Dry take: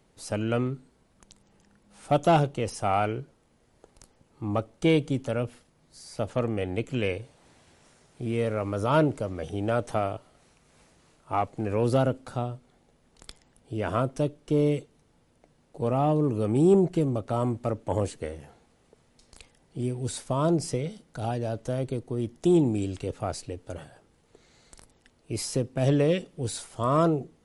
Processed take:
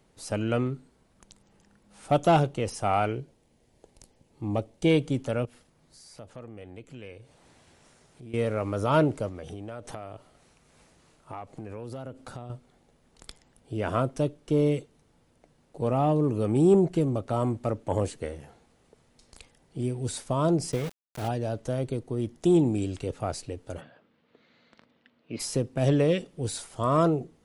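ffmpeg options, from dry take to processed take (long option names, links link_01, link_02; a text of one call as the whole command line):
ffmpeg -i in.wav -filter_complex "[0:a]asettb=1/sr,asplit=3[link_01][link_02][link_03];[link_01]atrim=end=3.154[link_04];[link_02]atrim=start=3.15:end=4.91,asetpts=PTS-STARTPTS,afade=type=in:duration=0.004:curve=qsin,afade=type=out:start_time=1.756:duration=0.004:curve=qsin,equalizer=frequency=1300:width_type=o:width=0.66:gain=-10[link_05];[link_03]atrim=start=4.906[link_06];[link_04][link_05]acrossfade=duration=0.004:curve1=hsin:curve2=qsin[link_07];[link_07][link_06]acrossfade=duration=0.004:curve1=qsin:curve2=hsin,asettb=1/sr,asplit=3[link_08][link_09][link_10];[link_08]atrim=end=5.454[link_11];[link_09]atrim=start=5.45:end=8.34,asetpts=PTS-STARTPTS,afade=type=in:duration=0.004:curve=qsin,afade=type=out:start_time=2.886:duration=0.004:curve=qsin,acompressor=threshold=-52dB:ratio=2:attack=3.2:release=140:knee=1:detection=peak[link_12];[link_10]atrim=start=8.336[link_13];[link_11][link_12]acrossfade=duration=0.004:curve1=hsin:curve2=qsin[link_14];[link_14][link_13]acrossfade=duration=0.004:curve1=qsin:curve2=hsin,asettb=1/sr,asplit=3[link_15][link_16][link_17];[link_15]atrim=end=9.284[link_18];[link_16]atrim=start=9.28:end=12.5,asetpts=PTS-STARTPTS,afade=type=in:duration=0.004:curve=qsin,afade=type=out:start_time=3.216:duration=0.004:curve=qsin,acompressor=threshold=-35dB:ratio=6:attack=3.2:release=140:knee=1:detection=peak[link_19];[link_17]atrim=start=12.496[link_20];[link_18][link_19]acrossfade=duration=0.004:curve1=hsin:curve2=qsin[link_21];[link_21][link_20]acrossfade=duration=0.004:curve1=qsin:curve2=hsin,asplit=3[link_22][link_23][link_24];[link_22]afade=type=out:start_time=20.71:duration=0.02[link_25];[link_23]aeval=exprs='val(0)*gte(abs(val(0)),0.0188)':channel_layout=same,afade=type=in:start_time=20.71:duration=0.02,afade=type=out:start_time=21.27:duration=0.02[link_26];[link_24]afade=type=in:start_time=21.27:duration=0.02[link_27];[link_25][link_26][link_27]amix=inputs=3:normalize=0,asplit=3[link_28][link_29][link_30];[link_28]afade=type=out:start_time=23.8:duration=0.02[link_31];[link_29]highpass=200,equalizer=frequency=230:width_type=q:width=4:gain=5,equalizer=frequency=380:width_type=q:width=4:gain=-8,equalizer=frequency=800:width_type=q:width=4:gain=-7,lowpass=frequency=3700:width=0.5412,lowpass=frequency=3700:width=1.3066,afade=type=in:start_time=23.8:duration=0.02,afade=type=out:start_time=25.39:duration=0.02[link_32];[link_30]afade=type=in:start_time=25.39:duration=0.02[link_33];[link_31][link_32][link_33]amix=inputs=3:normalize=0" out.wav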